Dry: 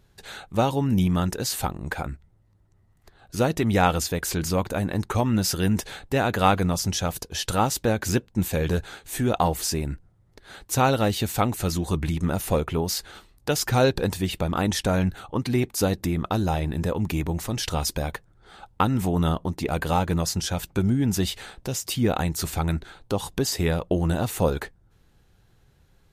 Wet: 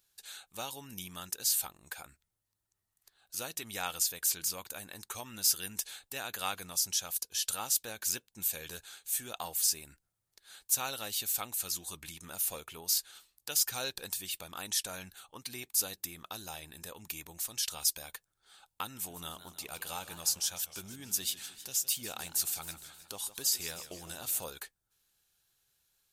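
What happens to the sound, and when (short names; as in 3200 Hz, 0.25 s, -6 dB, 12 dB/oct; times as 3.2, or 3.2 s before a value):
18.92–24.44 warbling echo 0.155 s, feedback 59%, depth 176 cents, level -13 dB
whole clip: pre-emphasis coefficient 0.97; notch 2000 Hz, Q 13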